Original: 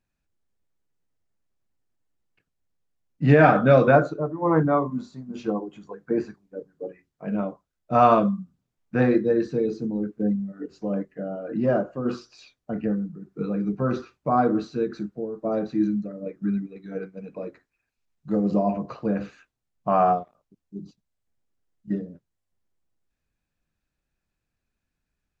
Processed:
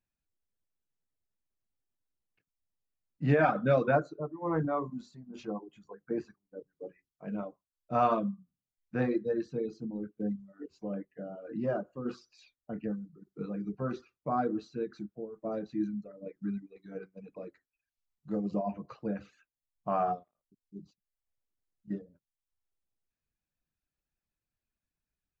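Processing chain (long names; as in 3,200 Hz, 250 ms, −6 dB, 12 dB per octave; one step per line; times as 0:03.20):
reverb reduction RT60 0.64 s
0:04.36–0:05.51: transient designer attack −3 dB, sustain +4 dB
level −9 dB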